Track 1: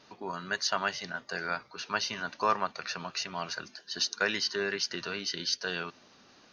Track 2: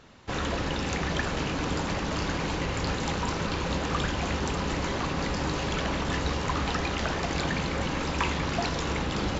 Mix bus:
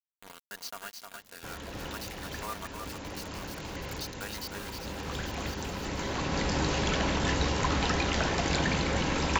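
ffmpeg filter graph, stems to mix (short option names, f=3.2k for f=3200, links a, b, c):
-filter_complex "[0:a]acrusher=bits=4:mix=0:aa=0.000001,aecho=1:1:4.3:0.38,volume=-14dB,afade=t=out:st=4.48:d=0.33:silence=0.421697,asplit=3[a][b][c];[b]volume=-5.5dB[d];[1:a]bandreject=f=1.2k:w=14,adelay=1150,volume=0.5dB,asplit=2[e][f];[f]volume=-16.5dB[g];[c]apad=whole_len=465195[h];[e][h]sidechaincompress=threshold=-55dB:ratio=6:attack=37:release=1140[i];[d][g]amix=inputs=2:normalize=0,aecho=0:1:310:1[j];[a][i][j]amix=inputs=3:normalize=0,highshelf=f=6.2k:g=5.5,acompressor=mode=upward:threshold=-48dB:ratio=2.5"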